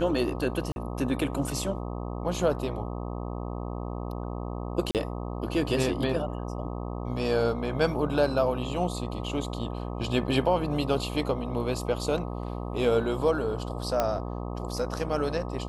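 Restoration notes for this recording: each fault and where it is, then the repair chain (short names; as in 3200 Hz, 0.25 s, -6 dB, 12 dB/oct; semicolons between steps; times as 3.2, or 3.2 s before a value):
buzz 60 Hz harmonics 21 -34 dBFS
0.72–0.76 gap 41 ms
4.91–4.95 gap 38 ms
14 pop -11 dBFS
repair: de-click; de-hum 60 Hz, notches 21; interpolate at 0.72, 41 ms; interpolate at 4.91, 38 ms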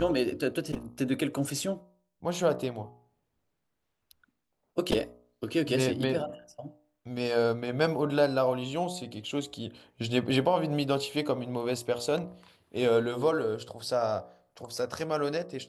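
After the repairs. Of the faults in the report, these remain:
none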